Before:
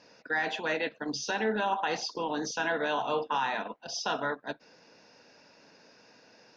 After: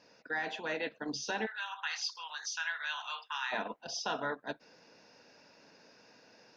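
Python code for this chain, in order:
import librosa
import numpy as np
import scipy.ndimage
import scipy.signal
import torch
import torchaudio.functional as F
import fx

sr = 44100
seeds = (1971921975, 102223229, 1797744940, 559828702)

y = fx.highpass(x, sr, hz=1300.0, slope=24, at=(1.45, 3.51), fade=0.02)
y = fx.rider(y, sr, range_db=10, speed_s=0.5)
y = y * 10.0 ** (-3.0 / 20.0)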